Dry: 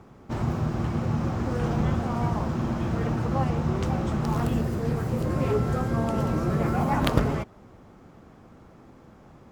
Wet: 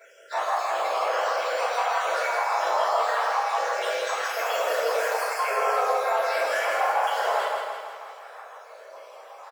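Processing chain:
time-frequency cells dropped at random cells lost 65%
Butterworth high-pass 540 Hz 48 dB per octave
downward compressor, threshold −36 dBFS, peak gain reduction 12.5 dB
brickwall limiter −33.5 dBFS, peak gain reduction 8.5 dB
on a send: repeating echo 163 ms, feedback 56%, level −5 dB
on the sum: rectangular room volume 300 cubic metres, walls mixed, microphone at 5.6 metres
level +4 dB

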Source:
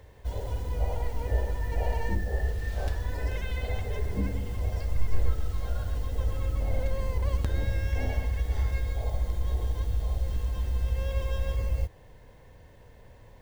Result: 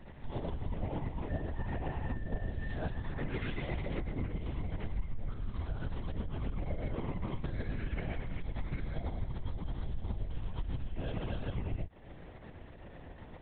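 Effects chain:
downward compressor 6 to 1, threshold −35 dBFS, peak gain reduction 18 dB
shaped tremolo saw up 8 Hz, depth 45%
linear-prediction vocoder at 8 kHz whisper
level +4 dB

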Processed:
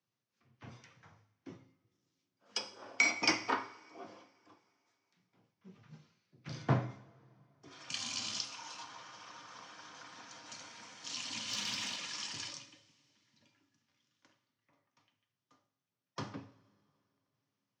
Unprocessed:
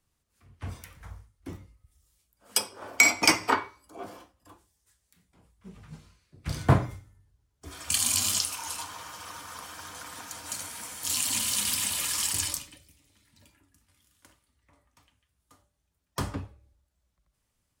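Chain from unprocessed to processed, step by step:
Chebyshev band-pass filter 120–6,000 Hz, order 4
0:11.49–0:11.96: leveller curve on the samples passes 1
coupled-rooms reverb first 0.64 s, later 3.1 s, from −19 dB, DRR 10 dB
level −8.5 dB

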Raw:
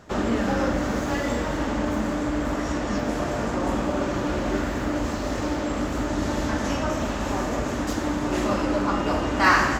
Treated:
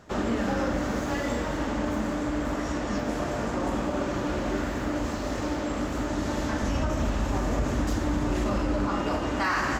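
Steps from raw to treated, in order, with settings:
0:06.62–0:08.89: low-shelf EQ 130 Hz +11.5 dB
brickwall limiter −14.5 dBFS, peak gain reduction 7.5 dB
level −3 dB

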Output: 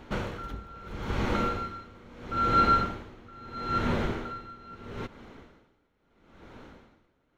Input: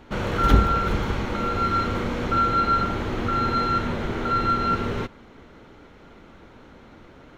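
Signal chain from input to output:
tremolo with a sine in dB 0.76 Hz, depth 25 dB

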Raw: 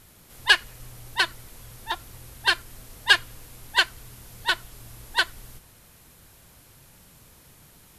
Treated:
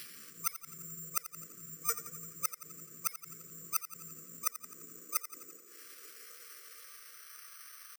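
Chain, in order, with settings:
meter weighting curve ITU-R 468
brick-wall band-stop 390–830 Hz
dynamic equaliser 450 Hz, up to +3 dB, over −58 dBFS, Q 0.79
in parallel at −2 dB: downward compressor 6 to 1, threshold −59 dBFS, peak gain reduction 47.5 dB
on the sum: pitch shifter +5 semitones
high-pass filter sweep 160 Hz → 800 Hz, 0:03.92–0:07.50
gate with flip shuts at −5 dBFS, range −29 dB
treble cut that deepens with the level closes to 620 Hz, closed at −40 dBFS
on a send: feedback echo with a high-pass in the loop 86 ms, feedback 63%, high-pass 420 Hz, level −12 dB
on the sum: bad sample-rate conversion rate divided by 6×, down filtered, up zero stuff
level +3.5 dB

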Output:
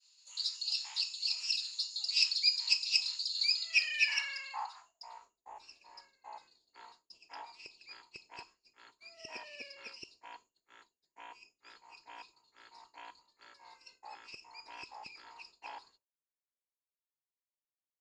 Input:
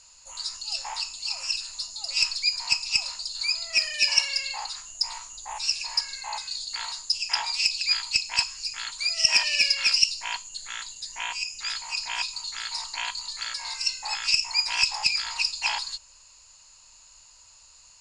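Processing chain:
band-pass filter sweep 3,900 Hz → 380 Hz, 0:03.54–0:05.42
downward expander −54 dBFS

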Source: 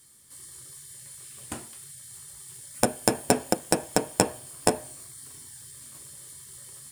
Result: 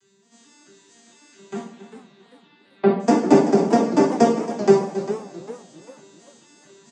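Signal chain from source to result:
vocoder with an arpeggio as carrier minor triad, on G3, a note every 221 ms
0:01.64–0:03.00: elliptic low-pass filter 4,100 Hz, stop band 40 dB
reverb reduction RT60 0.58 s
on a send: single-tap delay 275 ms −14.5 dB
on the sum: coupled-rooms reverb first 0.53 s, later 2.1 s, DRR −6 dB
feedback echo with a swinging delay time 393 ms, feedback 37%, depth 210 cents, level −12.5 dB
level +4 dB

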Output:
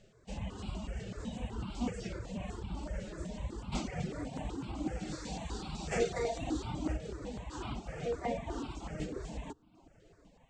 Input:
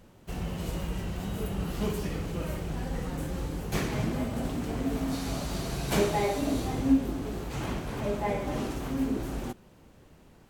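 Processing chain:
elliptic low-pass filter 7,800 Hz, stop band 50 dB
mains-hum notches 60/120/180 Hz
tape delay 311 ms, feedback 80%, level −23 dB, low-pass 2,100 Hz
reverb reduction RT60 0.66 s
phase-vocoder pitch shift with formants kept +2.5 semitones
step-sequenced phaser 8 Hz 270–1,800 Hz
level −1 dB

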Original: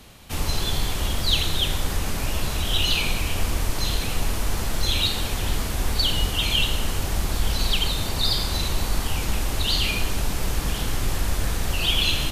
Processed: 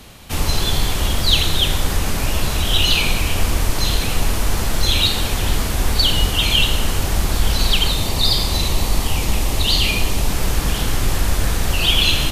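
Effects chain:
0:07.95–0:10.28: parametric band 1,500 Hz −7.5 dB 0.34 octaves
level +6 dB

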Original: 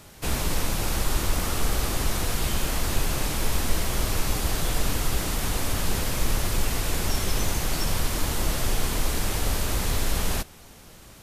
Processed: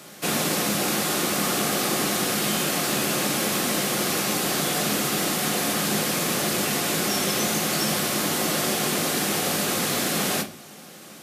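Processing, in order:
high-pass filter 170 Hz 24 dB per octave
notch filter 940 Hz, Q 8.7
convolution reverb RT60 0.40 s, pre-delay 6 ms, DRR 6 dB
level +5 dB

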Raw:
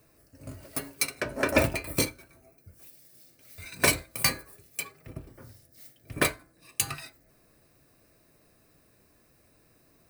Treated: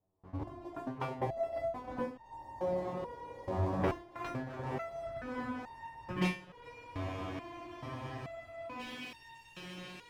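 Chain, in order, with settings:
samples in bit-reversed order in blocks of 32 samples
in parallel at −2 dB: speech leveller within 5 dB 2 s
on the sum: low-pass that shuts in the quiet parts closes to 1,100 Hz, open at −16.5 dBFS
noise gate with hold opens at −48 dBFS
low-pass filter sweep 920 Hz → 3,600 Hz, 0:03.34–0:07.00
feedback delay with all-pass diffusion 1,071 ms, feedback 53%, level −14.5 dB
downward compressor 3 to 1, threshold −41 dBFS, peak gain reduction 21.5 dB
on a send at −8 dB: convolution reverb RT60 0.40 s, pre-delay 3 ms
on the sum: leveller curve on the samples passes 2
frozen spectrum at 0:06.71, 2.07 s
step-sequenced resonator 2.3 Hz 94–920 Hz
level +10 dB

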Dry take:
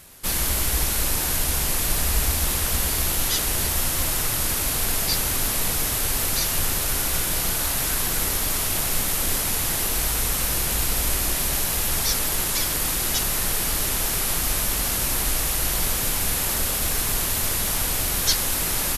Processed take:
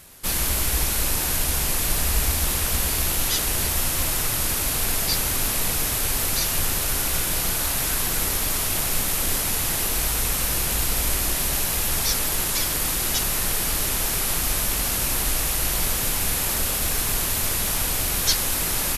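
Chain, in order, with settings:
loose part that buzzes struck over −32 dBFS, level −28 dBFS

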